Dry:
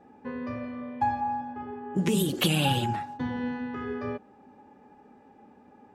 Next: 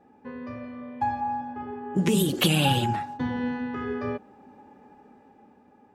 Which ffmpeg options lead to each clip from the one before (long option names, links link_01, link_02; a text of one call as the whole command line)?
ffmpeg -i in.wav -af "dynaudnorm=framelen=270:gausssize=9:maxgain=6dB,volume=-3dB" out.wav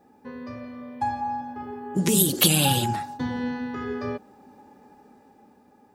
ffmpeg -i in.wav -af "aexciter=amount=3.6:drive=3:freq=3900" out.wav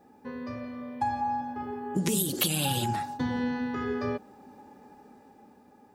ffmpeg -i in.wav -af "acompressor=threshold=-24dB:ratio=6" out.wav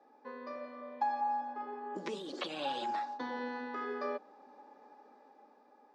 ffmpeg -i in.wav -filter_complex "[0:a]acrossover=split=3300[link_01][link_02];[link_02]acompressor=threshold=-38dB:ratio=4:attack=1:release=60[link_03];[link_01][link_03]amix=inputs=2:normalize=0,highpass=frequency=310:width=0.5412,highpass=frequency=310:width=1.3066,equalizer=frequency=380:width_type=q:width=4:gain=-4,equalizer=frequency=590:width_type=q:width=4:gain=5,equalizer=frequency=1100:width_type=q:width=4:gain=6,equalizer=frequency=2900:width_type=q:width=4:gain=-5,lowpass=frequency=5300:width=0.5412,lowpass=frequency=5300:width=1.3066,volume=-5dB" out.wav